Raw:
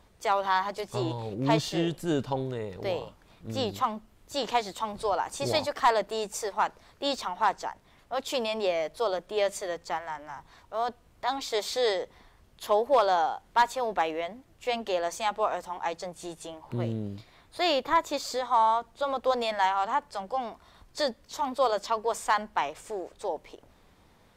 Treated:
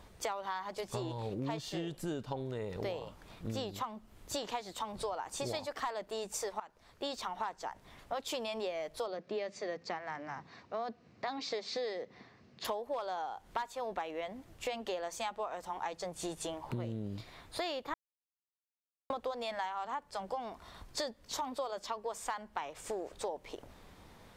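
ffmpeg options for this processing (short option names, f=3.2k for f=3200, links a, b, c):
-filter_complex "[0:a]asettb=1/sr,asplit=3[a][b][c];[a]atrim=end=9.064[d];[b]atrim=start=9.06:end=12.65,asetpts=PTS-STARTPTS,afade=t=in:d=0.004:c=qsin,afade=t=out:st=3.586:d=0.004:c=qsin,highpass=f=110:w=0.5412,highpass=f=110:w=1.3066,equalizer=f=220:t=q:w=4:g=5,equalizer=f=600:t=q:w=4:g=-3,equalizer=f=920:t=q:w=4:g=-8,equalizer=f=1.4k:t=q:w=4:g=-5,equalizer=f=3.3k:t=q:w=4:g=-9,lowpass=f=5.2k:w=0.5412,lowpass=f=5.2k:w=1.3066[e];[c]atrim=start=12.646[f];[d][e]acrossfade=d=0.004:c1=hsin:c2=qsin[g];[g][f]acrossfade=d=0.004:c1=qsin:c2=hsin,asplit=4[h][i][j][k];[h]atrim=end=6.6,asetpts=PTS-STARTPTS,afade=t=out:st=6.596:d=0.004:c=hsin:silence=0.125893[l];[i]atrim=start=6.6:end=17.94,asetpts=PTS-STARTPTS,afade=t=in:d=0.98:silence=0.125893,afade=t=out:st=11.336:d=0.004:c=hsin[m];[j]atrim=start=17.94:end=19.1,asetpts=PTS-STARTPTS,volume=0[n];[k]atrim=start=19.1,asetpts=PTS-STARTPTS,afade=t=in:d=0.004:c=hsin[o];[l][m][n][o]concat=n=4:v=0:a=1,acompressor=threshold=-38dB:ratio=12,volume=3.5dB"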